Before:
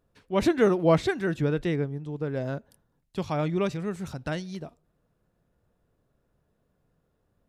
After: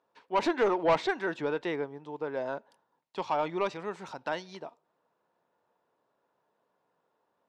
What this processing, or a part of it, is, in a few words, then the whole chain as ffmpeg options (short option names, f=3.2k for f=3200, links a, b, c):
intercom: -af "highpass=410,lowpass=4.9k,equalizer=f=930:t=o:w=0.41:g=11,asoftclip=type=tanh:threshold=-18dB"